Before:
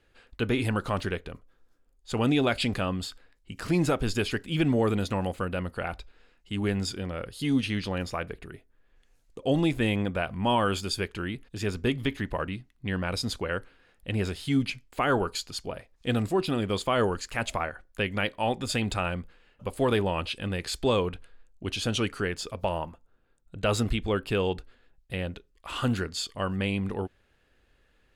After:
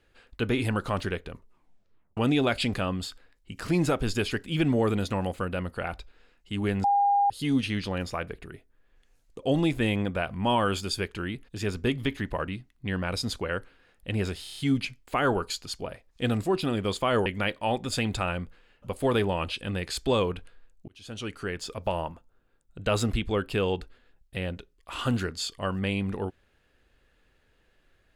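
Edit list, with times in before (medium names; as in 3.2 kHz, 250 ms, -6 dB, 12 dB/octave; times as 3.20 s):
1.32 s: tape stop 0.85 s
6.84–7.30 s: bleep 807 Hz -19 dBFS
14.43 s: stutter 0.03 s, 6 plays
17.11–18.03 s: delete
21.65–22.54 s: fade in linear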